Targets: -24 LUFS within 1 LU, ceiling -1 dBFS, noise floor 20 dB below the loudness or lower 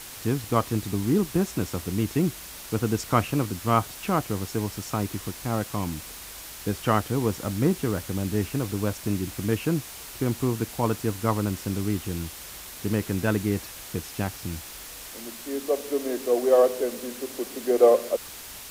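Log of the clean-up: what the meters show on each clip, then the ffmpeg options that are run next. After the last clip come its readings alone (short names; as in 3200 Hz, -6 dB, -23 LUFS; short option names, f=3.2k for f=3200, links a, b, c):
noise floor -41 dBFS; noise floor target -47 dBFS; loudness -26.5 LUFS; peak -5.5 dBFS; loudness target -24.0 LUFS
-> -af "afftdn=nr=6:nf=-41"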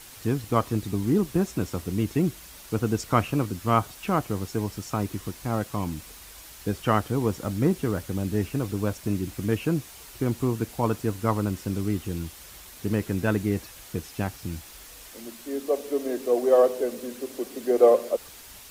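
noise floor -46 dBFS; noise floor target -47 dBFS
-> -af "afftdn=nr=6:nf=-46"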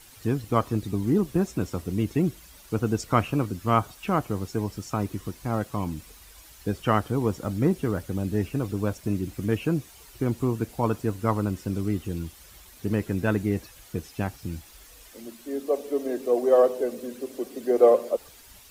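noise floor -50 dBFS; loudness -27.0 LUFS; peak -5.5 dBFS; loudness target -24.0 LUFS
-> -af "volume=3dB"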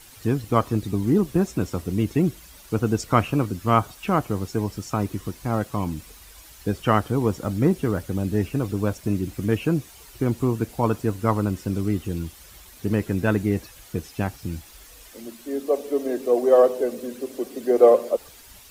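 loudness -24.0 LUFS; peak -2.5 dBFS; noise floor -47 dBFS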